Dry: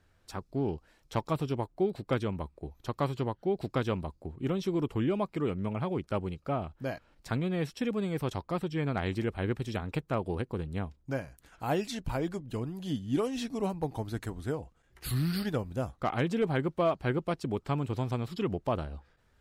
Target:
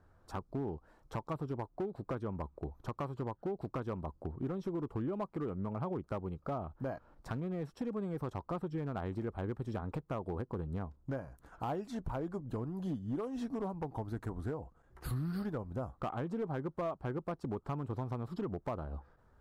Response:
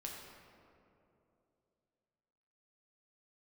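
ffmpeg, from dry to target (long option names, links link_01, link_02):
-af "highshelf=frequency=1700:width_type=q:width=1.5:gain=-12,acompressor=threshold=-37dB:ratio=5,asoftclip=type=hard:threshold=-33dB,volume=2.5dB"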